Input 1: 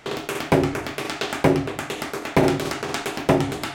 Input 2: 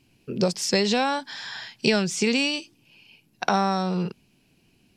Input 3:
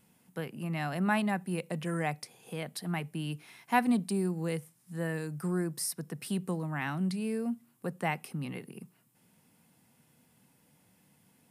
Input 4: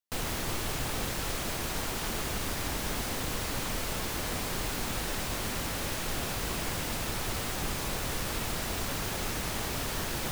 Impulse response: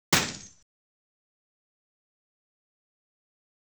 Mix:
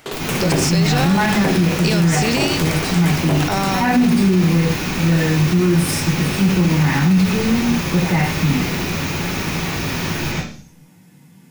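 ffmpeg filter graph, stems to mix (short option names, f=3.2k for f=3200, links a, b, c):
-filter_complex "[0:a]volume=-0.5dB[a];[1:a]volume=2.5dB[b];[2:a]volume=-1.5dB,asplit=2[c][d];[d]volume=-6.5dB[e];[3:a]equalizer=f=2.5k:t=o:w=0.33:g=6,equalizer=f=8k:t=o:w=0.33:g=-10,equalizer=f=12.5k:t=o:w=0.33:g=-10,volume=-0.5dB,asplit=2[f][g];[g]volume=-11.5dB[h];[4:a]atrim=start_sample=2205[i];[e][h]amix=inputs=2:normalize=0[j];[j][i]afir=irnorm=-1:irlink=0[k];[a][b][c][f][k]amix=inputs=5:normalize=0,highshelf=f=6.7k:g=10.5,alimiter=limit=-7.5dB:level=0:latency=1:release=36"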